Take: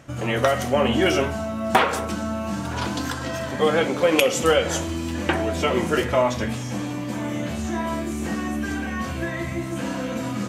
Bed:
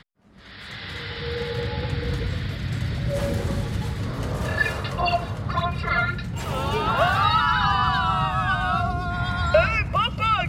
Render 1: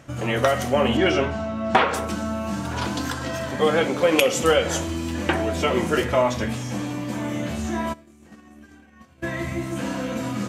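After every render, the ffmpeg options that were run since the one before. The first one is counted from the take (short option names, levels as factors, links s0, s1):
-filter_complex "[0:a]asettb=1/sr,asplit=3[s0][s1][s2];[s0]atrim=end=0.974[s3];[s1]atrim=start=0.97:end=1.94,asetpts=PTS-STARTPTS,afade=t=in:d=0.004:c=qsin,afade=t=out:st=0.966:d=0.004:c=qsin,lowpass=4700[s4];[s2]atrim=start=1.936[s5];[s3][s4]acrossfade=d=0.004:c1=hsin:c2=qsin[s6];[s6][s5]acrossfade=d=0.004:c1=qsin:c2=hsin,asplit=3[s7][s8][s9];[s7]afade=t=out:st=7.92:d=0.02[s10];[s8]agate=range=0.0224:threshold=0.2:ratio=3:release=100:detection=peak,afade=t=in:st=7.92:d=0.02,afade=t=out:st=9.22:d=0.02[s11];[s9]afade=t=in:st=9.22:d=0.02[s12];[s10][s11][s12]amix=inputs=3:normalize=0"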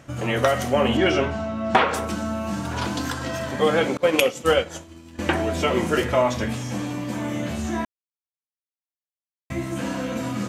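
-filter_complex "[0:a]asettb=1/sr,asplit=3[s0][s1][s2];[s0]atrim=end=3.974[s3];[s1]atrim=start=3.97:end=5.19,asetpts=PTS-STARTPTS,afade=t=in:d=0.004:c=qsin,afade=t=out:st=1.216:d=0.004:c=qsin,agate=range=0.0224:threshold=0.141:ratio=3:release=100:detection=peak[s4];[s2]atrim=start=5.186[s5];[s3][s4]acrossfade=d=0.004:c1=hsin:c2=qsin[s6];[s6][s5]acrossfade=d=0.004:c1=qsin:c2=hsin,asplit=3[s7][s8][s9];[s7]atrim=end=7.85,asetpts=PTS-STARTPTS,afade=t=out:st=7.846:d=0.004:c=hsin[s10];[s8]atrim=start=7.85:end=9.5,asetpts=PTS-STARTPTS,volume=0[s11];[s9]atrim=start=9.5,asetpts=PTS-STARTPTS,afade=t=in:d=0.004:c=hsin[s12];[s10][s11][s12]concat=n=3:v=0:a=1"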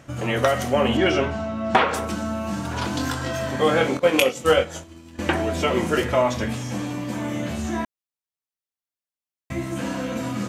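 -filter_complex "[0:a]asettb=1/sr,asplit=3[s0][s1][s2];[s0]atrim=end=2.914[s3];[s1]atrim=start=2.91:end=4.84,asetpts=PTS-STARTPTS,afade=t=in:d=0.004:c=qsin,afade=t=out:st=1.926:d=0.004:c=qsin,asplit=2[s4][s5];[s5]adelay=23,volume=0.501[s6];[s4][s6]amix=inputs=2:normalize=0,atrim=end_sample=85113[s7];[s2]atrim=start=4.836[s8];[s3][s7]acrossfade=d=0.004:c1=hsin:c2=qsin[s9];[s9][s8]acrossfade=d=0.004:c1=qsin:c2=hsin"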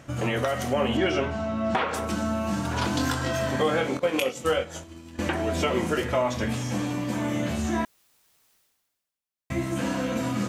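-af "alimiter=limit=0.2:level=0:latency=1:release=349,areverse,acompressor=mode=upward:threshold=0.00891:ratio=2.5,areverse"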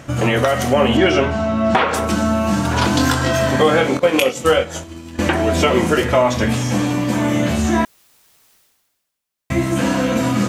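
-af "volume=3.16"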